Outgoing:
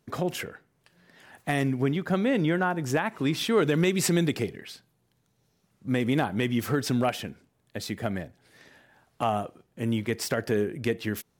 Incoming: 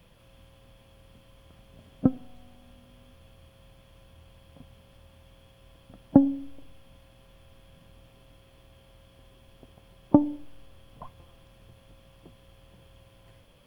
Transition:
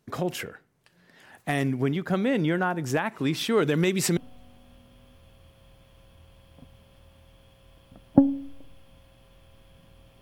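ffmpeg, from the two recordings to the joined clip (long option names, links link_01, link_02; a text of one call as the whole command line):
ffmpeg -i cue0.wav -i cue1.wav -filter_complex "[0:a]apad=whole_dur=10.21,atrim=end=10.21,atrim=end=4.172[link_01];[1:a]atrim=start=2.148:end=8.19[link_02];[link_01][link_02]acrossfade=duration=0.004:curve1=hsin:curve2=hsin" out.wav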